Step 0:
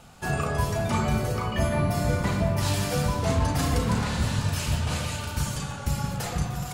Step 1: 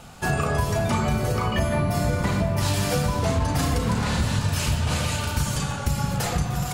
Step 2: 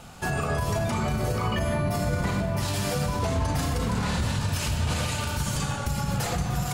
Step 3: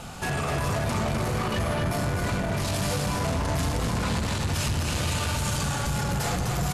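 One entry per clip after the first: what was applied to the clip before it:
downward compressor, threshold −25 dBFS, peak gain reduction 7 dB; level +6 dB
brickwall limiter −17 dBFS, peak gain reduction 6 dB; convolution reverb, pre-delay 38 ms, DRR 11.5 dB; level −1 dB
soft clipping −32 dBFS, distortion −8 dB; on a send: single-tap delay 253 ms −5 dB; on the sum: level +6.5 dB; MP2 192 kbit/s 44,100 Hz

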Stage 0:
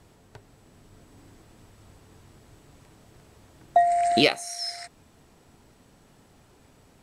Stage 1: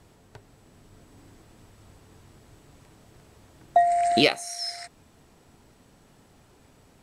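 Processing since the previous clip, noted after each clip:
no processing that can be heard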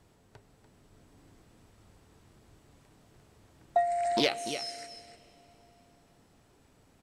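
single-tap delay 292 ms −10.5 dB
dense smooth reverb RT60 4 s, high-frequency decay 0.85×, DRR 18.5 dB
highs frequency-modulated by the lows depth 0.23 ms
level −7 dB

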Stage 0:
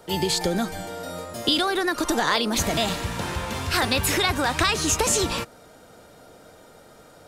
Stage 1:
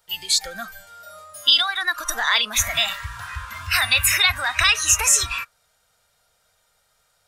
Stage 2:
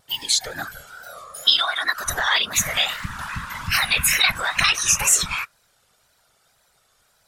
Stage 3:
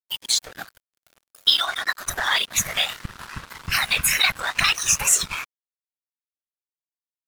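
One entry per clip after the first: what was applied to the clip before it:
dynamic equaliser 2,400 Hz, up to +5 dB, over −38 dBFS, Q 1.3; noise reduction from a noise print of the clip's start 15 dB; guitar amp tone stack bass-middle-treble 10-0-10; level +7.5 dB
in parallel at −2 dB: downward compressor, threshold −25 dBFS, peak gain reduction 13.5 dB; on the sum: tape wow and flutter 94 cents; random phases in short frames; level −2.5 dB
dead-zone distortion −32 dBFS

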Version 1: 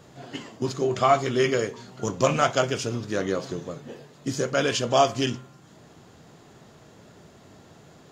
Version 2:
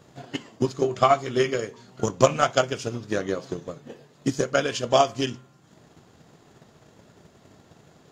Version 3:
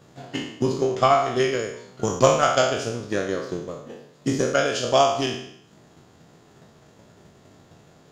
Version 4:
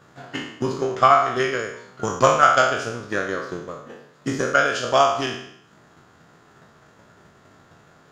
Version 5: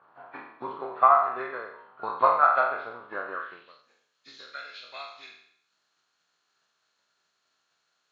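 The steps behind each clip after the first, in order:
transient designer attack +10 dB, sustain −2 dB; level −4 dB
peak hold with a decay on every bin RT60 0.71 s; level −1 dB
parametric band 1,400 Hz +11 dB 1.1 octaves; level −2.5 dB
hearing-aid frequency compression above 1,600 Hz 1.5 to 1; band-pass filter sweep 970 Hz → 6,600 Hz, 0:03.31–0:03.90

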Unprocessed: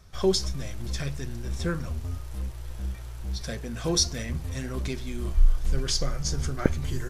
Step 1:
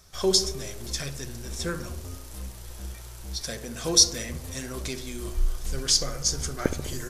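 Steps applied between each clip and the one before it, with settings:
bass and treble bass −6 dB, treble +9 dB
tape delay 67 ms, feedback 79%, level −9 dB, low-pass 1,100 Hz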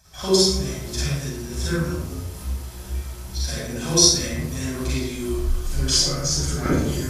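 high-pass filter 47 Hz
convolution reverb RT60 0.60 s, pre-delay 37 ms, DRR −7 dB
level −4.5 dB

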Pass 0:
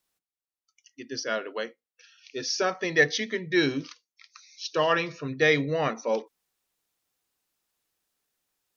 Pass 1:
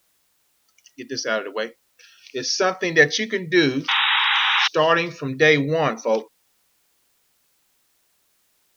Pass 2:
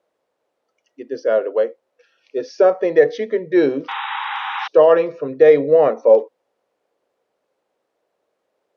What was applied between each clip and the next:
sound drawn into the spectrogram noise, 0:03.88–0:04.68, 770–3,900 Hz −25 dBFS; bit-depth reduction 12 bits, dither triangular; level +6 dB
resonant band-pass 520 Hz, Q 2.9; boost into a limiter +12.5 dB; level −1 dB

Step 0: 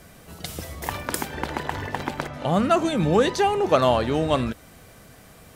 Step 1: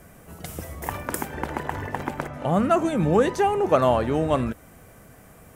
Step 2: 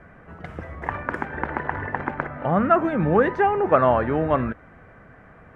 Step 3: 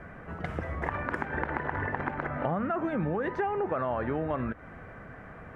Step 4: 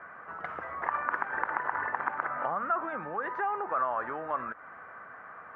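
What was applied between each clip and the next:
parametric band 4,100 Hz −11.5 dB 1.1 octaves
low-pass with resonance 1,700 Hz, resonance Q 2.1
brickwall limiter −12.5 dBFS, peak gain reduction 8 dB; downward compressor 6 to 1, threshold −30 dBFS, peak gain reduction 12.5 dB; level +2.5 dB
resonant band-pass 1,200 Hz, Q 2.3; level +6.5 dB

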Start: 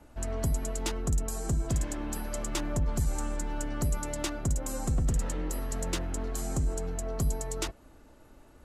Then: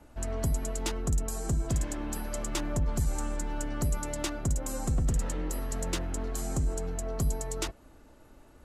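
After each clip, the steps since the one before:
no processing that can be heard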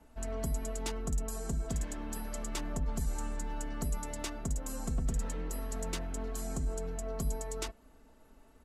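comb filter 4.5 ms, depth 50%
level −6 dB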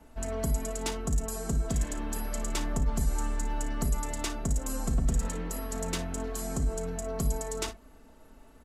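ambience of single reflections 35 ms −14.5 dB, 57 ms −13 dB
level +5 dB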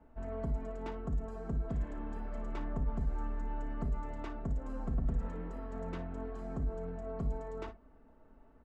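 low-pass filter 1,500 Hz 12 dB per octave
level −6 dB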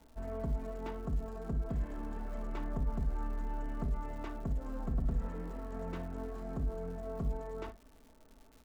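surface crackle 250 per second −51 dBFS

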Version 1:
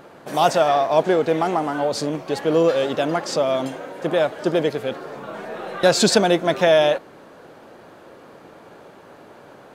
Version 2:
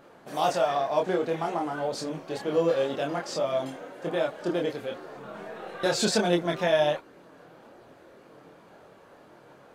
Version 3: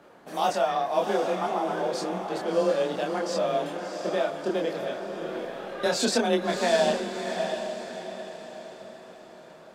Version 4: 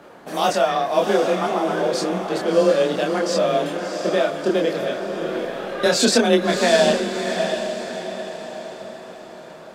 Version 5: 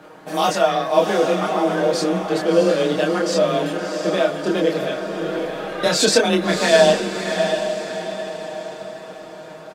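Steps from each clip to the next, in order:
multi-voice chorus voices 4, 0.49 Hz, delay 26 ms, depth 3.4 ms; level −5 dB
frequency shifter +24 Hz; feedback delay with all-pass diffusion 684 ms, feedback 43%, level −6 dB
dynamic equaliser 850 Hz, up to −6 dB, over −42 dBFS, Q 2.4; level +8.5 dB
comb filter 6.4 ms

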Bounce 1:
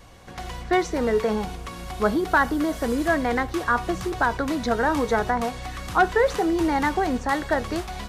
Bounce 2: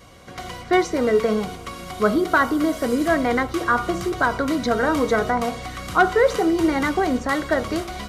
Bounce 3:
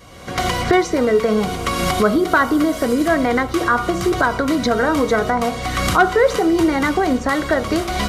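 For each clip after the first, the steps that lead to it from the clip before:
notch comb filter 870 Hz; hum removal 57.39 Hz, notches 25; level +4 dB
camcorder AGC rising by 30 dB per second; level +2.5 dB

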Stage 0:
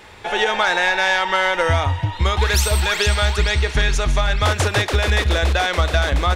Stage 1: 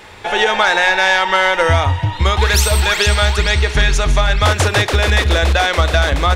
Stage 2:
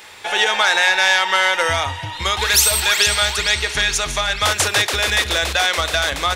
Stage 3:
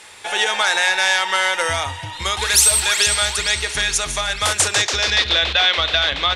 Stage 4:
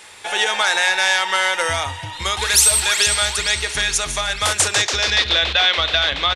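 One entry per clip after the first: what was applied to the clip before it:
mains-hum notches 60/120/180/240/300/360/420 Hz; level +4.5 dB
spectral tilt +3 dB per octave; level −4 dB
low-pass filter sweep 9,700 Hz → 3,500 Hz, 0:04.55–0:05.41; level −2.5 dB
downsampling to 32,000 Hz

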